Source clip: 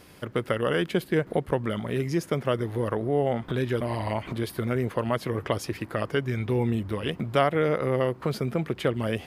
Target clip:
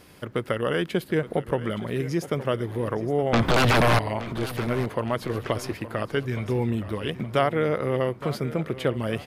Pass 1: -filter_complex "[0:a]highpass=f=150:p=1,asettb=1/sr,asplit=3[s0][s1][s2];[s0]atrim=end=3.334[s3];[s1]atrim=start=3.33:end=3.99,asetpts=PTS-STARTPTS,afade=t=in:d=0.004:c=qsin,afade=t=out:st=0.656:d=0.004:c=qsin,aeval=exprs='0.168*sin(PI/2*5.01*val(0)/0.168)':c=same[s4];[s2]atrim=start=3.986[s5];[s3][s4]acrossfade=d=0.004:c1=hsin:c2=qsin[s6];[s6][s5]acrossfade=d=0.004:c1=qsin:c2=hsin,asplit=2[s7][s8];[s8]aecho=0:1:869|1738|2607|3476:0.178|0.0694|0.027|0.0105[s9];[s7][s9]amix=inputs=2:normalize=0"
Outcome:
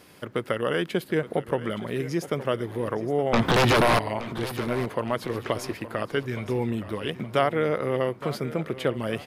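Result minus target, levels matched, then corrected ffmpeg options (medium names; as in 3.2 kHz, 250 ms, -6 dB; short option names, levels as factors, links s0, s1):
125 Hz band -2.5 dB
-filter_complex "[0:a]asettb=1/sr,asplit=3[s0][s1][s2];[s0]atrim=end=3.334[s3];[s1]atrim=start=3.33:end=3.99,asetpts=PTS-STARTPTS,afade=t=in:d=0.004:c=qsin,afade=t=out:st=0.656:d=0.004:c=qsin,aeval=exprs='0.168*sin(PI/2*5.01*val(0)/0.168)':c=same[s4];[s2]atrim=start=3.986[s5];[s3][s4]acrossfade=d=0.004:c1=hsin:c2=qsin[s6];[s6][s5]acrossfade=d=0.004:c1=qsin:c2=hsin,asplit=2[s7][s8];[s8]aecho=0:1:869|1738|2607|3476:0.178|0.0694|0.027|0.0105[s9];[s7][s9]amix=inputs=2:normalize=0"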